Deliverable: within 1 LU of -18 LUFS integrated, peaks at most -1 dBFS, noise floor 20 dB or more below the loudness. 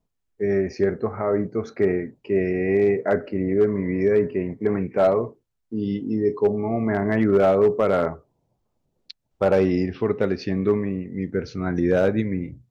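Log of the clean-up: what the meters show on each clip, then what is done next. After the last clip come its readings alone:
clipped samples 0.3%; clipping level -11.0 dBFS; loudness -22.5 LUFS; peak level -11.0 dBFS; loudness target -18.0 LUFS
-> clip repair -11 dBFS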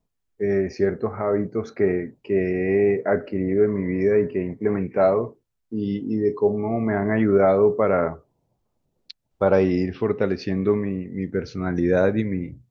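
clipped samples 0.0%; loudness -22.5 LUFS; peak level -6.0 dBFS; loudness target -18.0 LUFS
-> trim +4.5 dB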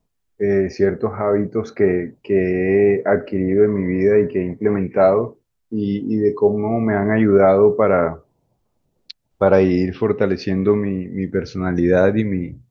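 loudness -18.0 LUFS; peak level -1.5 dBFS; noise floor -71 dBFS

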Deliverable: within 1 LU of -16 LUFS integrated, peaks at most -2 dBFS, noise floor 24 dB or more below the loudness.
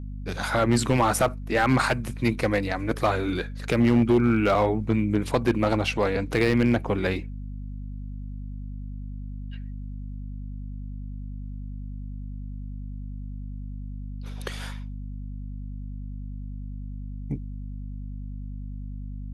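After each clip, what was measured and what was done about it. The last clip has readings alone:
clipped samples 0.4%; clipping level -13.5 dBFS; hum 50 Hz; highest harmonic 250 Hz; hum level -32 dBFS; loudness -24.5 LUFS; peak level -13.5 dBFS; loudness target -16.0 LUFS
-> clip repair -13.5 dBFS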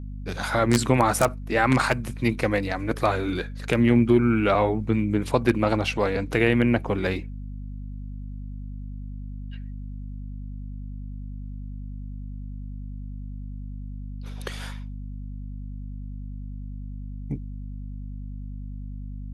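clipped samples 0.0%; hum 50 Hz; highest harmonic 250 Hz; hum level -32 dBFS
-> de-hum 50 Hz, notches 5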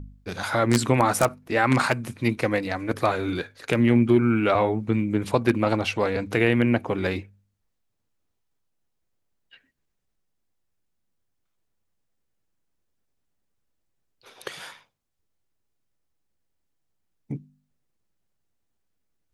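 hum not found; loudness -23.0 LUFS; peak level -4.5 dBFS; loudness target -16.0 LUFS
-> trim +7 dB; peak limiter -2 dBFS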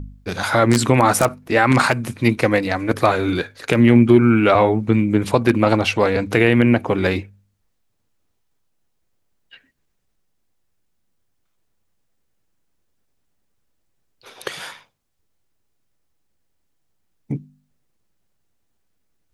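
loudness -16.5 LUFS; peak level -2.0 dBFS; noise floor -69 dBFS

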